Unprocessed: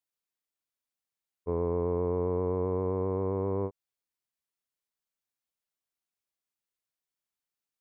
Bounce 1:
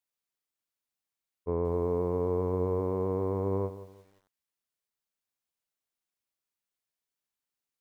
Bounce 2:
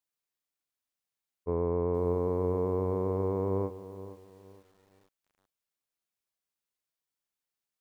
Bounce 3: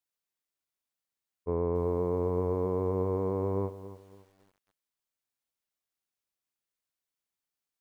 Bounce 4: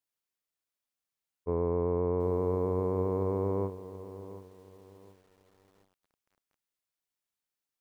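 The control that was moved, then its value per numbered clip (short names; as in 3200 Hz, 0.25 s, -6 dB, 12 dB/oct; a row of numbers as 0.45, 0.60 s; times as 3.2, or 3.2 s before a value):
lo-fi delay, time: 0.176, 0.469, 0.279, 0.729 s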